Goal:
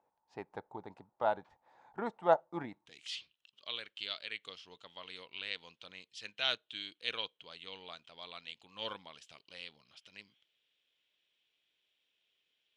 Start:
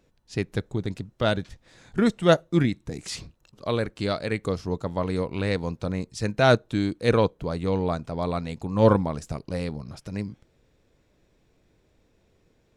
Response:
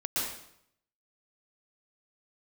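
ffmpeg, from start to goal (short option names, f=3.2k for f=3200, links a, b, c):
-af "asetnsamples=n=441:p=0,asendcmd='2.86 bandpass f 3100',bandpass=f=860:t=q:w=7.1:csg=0,volume=6dB"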